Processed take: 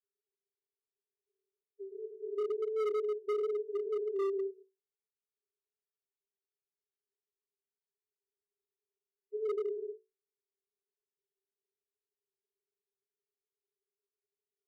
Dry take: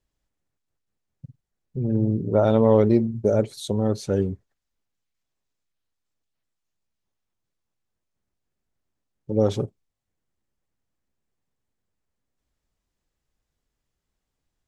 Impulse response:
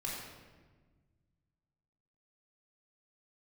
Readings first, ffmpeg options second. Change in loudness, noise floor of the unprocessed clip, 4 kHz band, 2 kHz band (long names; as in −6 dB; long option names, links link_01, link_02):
−13.5 dB, −82 dBFS, below −15 dB, below −10 dB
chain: -filter_complex "[1:a]atrim=start_sample=2205,afade=type=out:start_time=0.31:duration=0.01,atrim=end_sample=14112[link_01];[0:a][link_01]afir=irnorm=-1:irlink=0,asplit=2[link_02][link_03];[link_03]acompressor=threshold=-26dB:ratio=8,volume=-0.5dB[link_04];[link_02][link_04]amix=inputs=2:normalize=0,asuperpass=centerf=410:order=20:qfactor=7.4,volume=23.5dB,asoftclip=hard,volume=-23.5dB,volume=-6dB"